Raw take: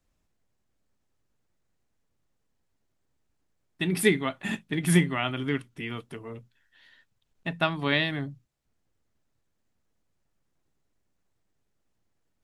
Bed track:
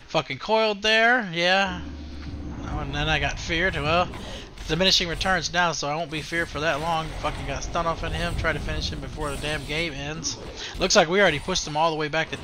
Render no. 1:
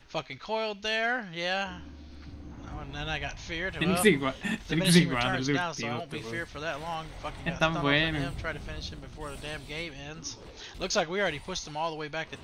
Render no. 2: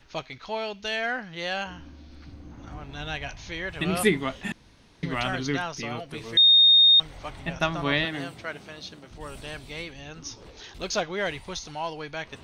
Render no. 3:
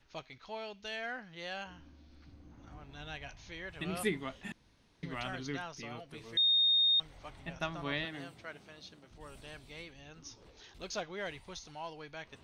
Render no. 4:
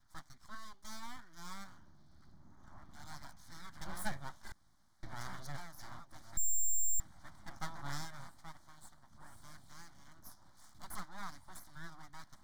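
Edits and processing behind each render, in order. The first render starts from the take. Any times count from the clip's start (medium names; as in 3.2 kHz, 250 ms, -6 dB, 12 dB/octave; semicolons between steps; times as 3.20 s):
add bed track -10 dB
4.52–5.03 s: room tone; 6.37–7.00 s: bleep 3.69 kHz -12.5 dBFS; 8.05–9.11 s: high-pass 190 Hz
trim -11.5 dB
full-wave rectifier; static phaser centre 1.1 kHz, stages 4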